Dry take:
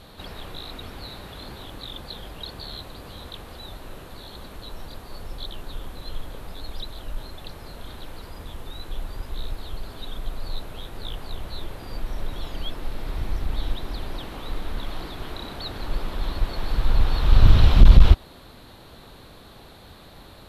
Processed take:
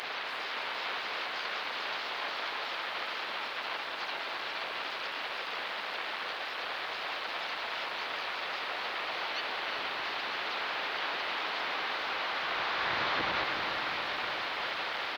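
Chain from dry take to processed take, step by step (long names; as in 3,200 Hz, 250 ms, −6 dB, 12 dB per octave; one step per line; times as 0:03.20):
linear delta modulator 16 kbit/s, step −30.5 dBFS
high-pass filter 700 Hz 12 dB per octave
in parallel at +2.5 dB: brickwall limiter −32 dBFS, peak gain reduction 9 dB
on the sum: pitch-shifted copies added −7 semitones −3 dB, −5 semitones −11 dB, +5 semitones −16 dB
centre clipping without the shift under −50.5 dBFS
on a send: feedback delay with all-pass diffusion 483 ms, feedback 70%, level −5 dB
on the sum: wrong playback speed 33 rpm record played at 45 rpm
level −5 dB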